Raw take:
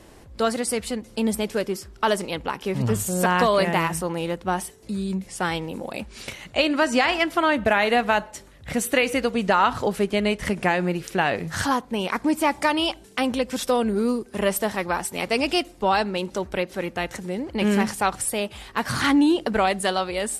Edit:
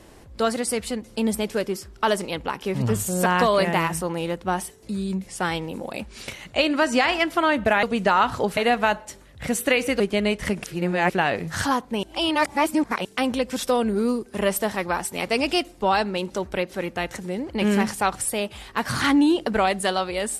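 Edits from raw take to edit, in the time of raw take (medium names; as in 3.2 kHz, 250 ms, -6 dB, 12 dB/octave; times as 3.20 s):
9.26–10.00 s: move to 7.83 s
10.64–11.10 s: reverse
12.03–13.05 s: reverse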